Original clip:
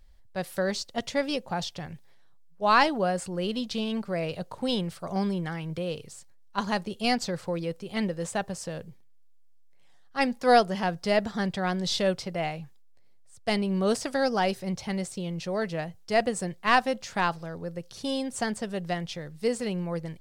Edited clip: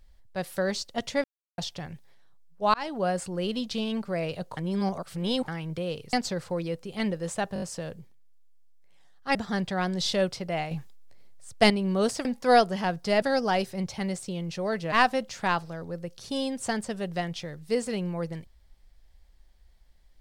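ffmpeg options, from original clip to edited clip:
-filter_complex "[0:a]asplit=17[s0][s1][s2][s3][s4][s5][s6][s7][s8][s9][s10][s11][s12][s13][s14][s15][s16];[s0]atrim=end=1.24,asetpts=PTS-STARTPTS,afade=t=out:st=1.236:d=0.004:c=hsin[s17];[s1]atrim=start=1.24:end=1.58,asetpts=PTS-STARTPTS,volume=0[s18];[s2]atrim=start=1.58:end=2.74,asetpts=PTS-STARTPTS,afade=t=in:d=0.004:c=hsin,afade=t=out:st=1.156:d=0.004:c=hsin[s19];[s3]atrim=start=2.74:end=4.572,asetpts=PTS-STARTPTS,afade=t=in:d=0.34[s20];[s4]atrim=start=4.568:end=5.482,asetpts=PTS-STARTPTS,areverse[s21];[s5]atrim=start=5.478:end=6.132[s22];[s6]atrim=start=7.098:end=8.532[s23];[s7]atrim=start=8.508:end=8.532[s24];[s8]atrim=start=8.508:end=8.532[s25];[s9]atrim=start=8.508:end=8.532[s26];[s10]atrim=start=8.508:end=10.242[s27];[s11]atrim=start=11.208:end=12.572[s28];[s12]atrim=start=12.568:end=13.562,asetpts=PTS-STARTPTS,volume=2.37[s29];[s13]atrim=start=13.558:end=14.112[s30];[s14]atrim=start=10.238:end=11.212[s31];[s15]atrim=start=14.108:end=15.812[s32];[s16]atrim=start=16.648[s33];[s17][s18][s19][s20]concat=n=4:v=0:a=1[s34];[s34][s21]acrossfade=d=0.004:c1=hsin:c2=hsin[s35];[s35][s22]acrossfade=d=0.004:c1=hsin:c2=hsin[s36];[s36][s23]acrossfade=d=0.004:c1=hsin:c2=hsin[s37];[s37][s24]acrossfade=d=0.004:c1=hsin:c2=hsin[s38];[s38][s25]acrossfade=d=0.004:c1=hsin:c2=hsin[s39];[s39][s26]acrossfade=d=0.004:c1=hsin:c2=hsin[s40];[s40][s27]acrossfade=d=0.004:c1=hsin:c2=hsin[s41];[s41][s28]acrossfade=d=0.004:c1=hsin:c2=hsin[s42];[s42][s29]acrossfade=d=0.004:c1=hsin:c2=hsin[s43];[s43][s30]acrossfade=d=0.004:c1=hsin:c2=hsin[s44];[s44][s31]acrossfade=d=0.004:c1=hsin:c2=hsin[s45];[s45][s32]acrossfade=d=0.004:c1=hsin:c2=hsin[s46];[s46][s33]acrossfade=d=0.004:c1=hsin:c2=hsin"

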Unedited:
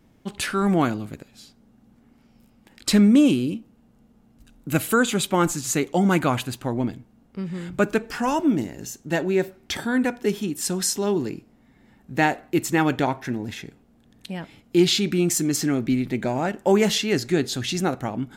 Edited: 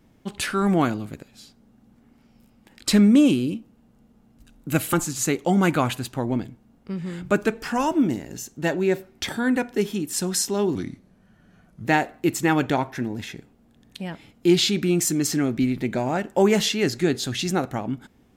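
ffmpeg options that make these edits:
-filter_complex "[0:a]asplit=4[s0][s1][s2][s3];[s0]atrim=end=4.932[s4];[s1]atrim=start=5.408:end=11.234[s5];[s2]atrim=start=11.23:end=12.14,asetpts=PTS-STARTPTS,asetrate=36603,aresample=44100[s6];[s3]atrim=start=12.136[s7];[s4][s5]acrossfade=d=0.004:c1=hsin:c2=hsin[s8];[s8][s6]acrossfade=d=0.004:c1=hsin:c2=hsin[s9];[s9][s7]acrossfade=d=0.004:c1=hsin:c2=hsin"

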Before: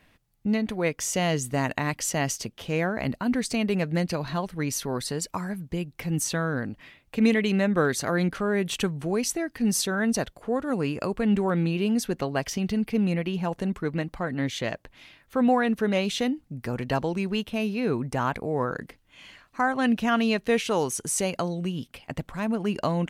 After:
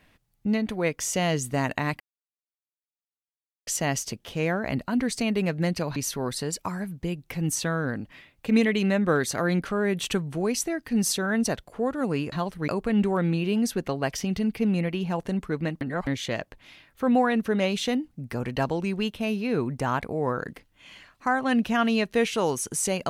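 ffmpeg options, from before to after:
-filter_complex "[0:a]asplit=7[s0][s1][s2][s3][s4][s5][s6];[s0]atrim=end=2,asetpts=PTS-STARTPTS,afade=t=out:st=1.996:d=0.004:c=hsin,apad=pad_dur=1.67[s7];[s1]atrim=start=2:end=4.292,asetpts=PTS-STARTPTS,afade=t=in:d=0.004:c=hsin[s8];[s2]atrim=start=4.648:end=11.012[s9];[s3]atrim=start=4.288:end=4.652[s10];[s4]atrim=start=11.008:end=14.142[s11];[s5]atrim=start=14.138:end=14.402,asetpts=PTS-STARTPTS,areverse[s12];[s6]atrim=start=14.398[s13];[s7][s8]concat=n=2:v=0:a=1[s14];[s14][s9]acrossfade=d=0.004:c1=hsin:c2=hsin[s15];[s15][s10]acrossfade=d=0.004:c1=hsin:c2=hsin[s16];[s16][s11]acrossfade=d=0.004:c1=hsin:c2=hsin[s17];[s17][s12]acrossfade=d=0.004:c1=hsin:c2=hsin[s18];[s18][s13]acrossfade=d=0.004:c1=hsin:c2=hsin"

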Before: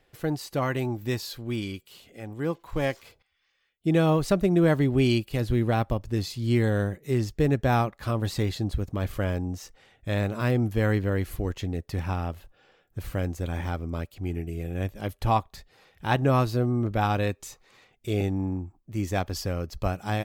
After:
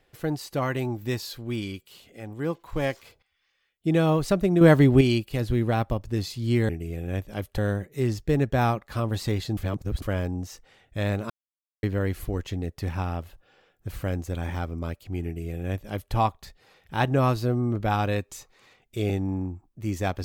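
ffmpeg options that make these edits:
-filter_complex "[0:a]asplit=9[s0][s1][s2][s3][s4][s5][s6][s7][s8];[s0]atrim=end=4.612[s9];[s1]atrim=start=4.608:end=5.012,asetpts=PTS-STARTPTS,volume=2[s10];[s2]atrim=start=5.008:end=6.692[s11];[s3]atrim=start=14.358:end=15.252[s12];[s4]atrim=start=6.688:end=8.682[s13];[s5]atrim=start=8.678:end=9.132,asetpts=PTS-STARTPTS,areverse[s14];[s6]atrim=start=9.128:end=10.41,asetpts=PTS-STARTPTS,afade=t=out:st=1.278:d=0.004:c=hsin[s15];[s7]atrim=start=10.41:end=10.94,asetpts=PTS-STARTPTS,volume=0[s16];[s8]atrim=start=10.94,asetpts=PTS-STARTPTS,afade=t=in:d=0.004:c=hsin[s17];[s9][s10]acrossfade=d=0.004:c1=hsin:c2=hsin[s18];[s18][s11]acrossfade=d=0.004:c1=hsin:c2=hsin[s19];[s19][s12]acrossfade=d=0.004:c1=hsin:c2=hsin[s20];[s20][s13]acrossfade=d=0.004:c1=hsin:c2=hsin[s21];[s21][s14]acrossfade=d=0.004:c1=hsin:c2=hsin[s22];[s15][s16][s17]concat=n=3:v=0:a=1[s23];[s22][s23]acrossfade=d=0.004:c1=hsin:c2=hsin"

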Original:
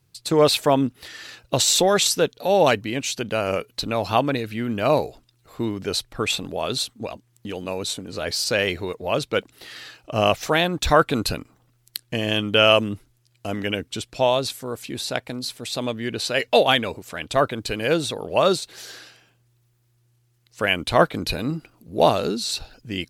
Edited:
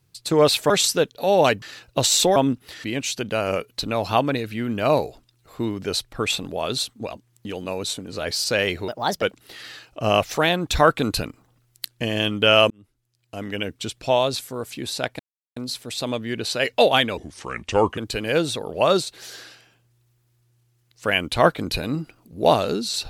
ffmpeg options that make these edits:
-filter_complex "[0:a]asplit=11[s0][s1][s2][s3][s4][s5][s6][s7][s8][s9][s10];[s0]atrim=end=0.702[s11];[s1]atrim=start=1.918:end=2.842[s12];[s2]atrim=start=1.178:end=1.922[s13];[s3]atrim=start=0.698:end=1.182[s14];[s4]atrim=start=2.838:end=8.884[s15];[s5]atrim=start=8.88:end=9.34,asetpts=PTS-STARTPTS,asetrate=59094,aresample=44100[s16];[s6]atrim=start=9.336:end=12.82,asetpts=PTS-STARTPTS,afade=t=out:st=3.48:d=0.004:c=hsin[s17];[s7]atrim=start=12.82:end=15.31,asetpts=PTS-STARTPTS,afade=t=in:d=1.16,afade=t=out:st=2.486:d=0.004:c=hsin,apad=pad_dur=0.37[s18];[s8]atrim=start=15.31:end=16.924,asetpts=PTS-STARTPTS,afade=t=in:d=0.004:c=hsin[s19];[s9]atrim=start=16.92:end=17.53,asetpts=PTS-STARTPTS,asetrate=33516,aresample=44100,atrim=end_sample=35396,asetpts=PTS-STARTPTS[s20];[s10]atrim=start=17.526[s21];[s11][s12]acrossfade=d=0.004:c1=hsin:c2=hsin[s22];[s22][s13]acrossfade=d=0.004:c1=hsin:c2=hsin[s23];[s23][s14]acrossfade=d=0.004:c1=hsin:c2=hsin[s24];[s24][s15]acrossfade=d=0.004:c1=hsin:c2=hsin[s25];[s25][s16]acrossfade=d=0.004:c1=hsin:c2=hsin[s26];[s17][s18][s19]concat=n=3:v=0:a=1[s27];[s26][s27]acrossfade=d=0.004:c1=hsin:c2=hsin[s28];[s28][s20]acrossfade=d=0.004:c1=hsin:c2=hsin[s29];[s29][s21]acrossfade=d=0.004:c1=hsin:c2=hsin"

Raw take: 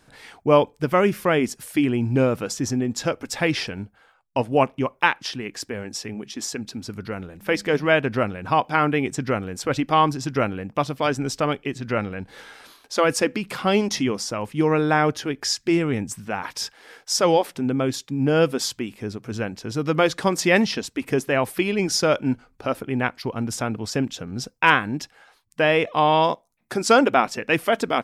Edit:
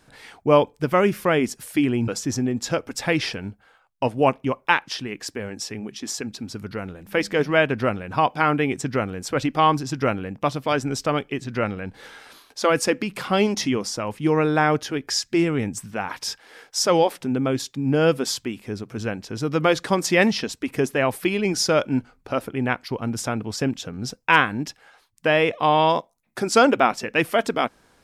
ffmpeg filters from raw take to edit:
-filter_complex "[0:a]asplit=2[s0][s1];[s0]atrim=end=2.082[s2];[s1]atrim=start=2.418[s3];[s2][s3]acrossfade=d=0.004:c1=hsin:c2=hsin"

